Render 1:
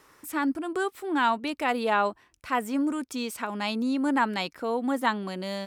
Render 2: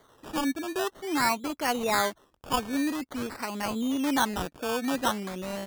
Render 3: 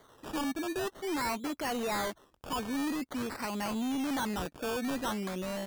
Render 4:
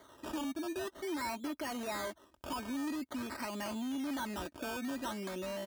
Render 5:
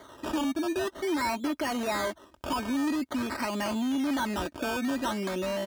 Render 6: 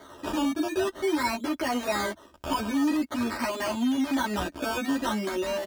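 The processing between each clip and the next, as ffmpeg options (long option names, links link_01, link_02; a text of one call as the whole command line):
ffmpeg -i in.wav -af "acrusher=samples=17:mix=1:aa=0.000001:lfo=1:lforange=10.2:lforate=0.48,volume=-1.5dB" out.wav
ffmpeg -i in.wav -af "asoftclip=type=hard:threshold=-30.5dB" out.wav
ffmpeg -i in.wav -af "highpass=51,aecho=1:1:3.2:0.54,acompressor=threshold=-39dB:ratio=2.5" out.wav
ffmpeg -i in.wav -af "highshelf=frequency=8100:gain=-6,volume=9dB" out.wav
ffmpeg -i in.wav -filter_complex "[0:a]asplit=2[link_01][link_02];[link_02]adelay=11.6,afreqshift=0.42[link_03];[link_01][link_03]amix=inputs=2:normalize=1,volume=5dB" out.wav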